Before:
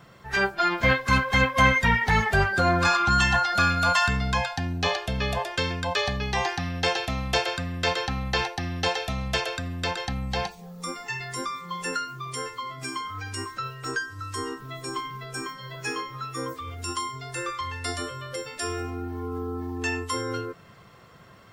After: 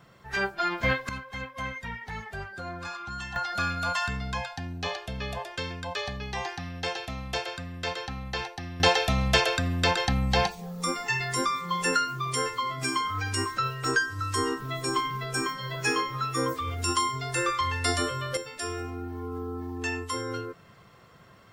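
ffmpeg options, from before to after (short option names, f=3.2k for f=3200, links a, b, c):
-af "asetnsamples=n=441:p=0,asendcmd='1.09 volume volume -16dB;3.36 volume volume -7dB;8.8 volume volume 4.5dB;18.37 volume volume -3dB',volume=-4.5dB"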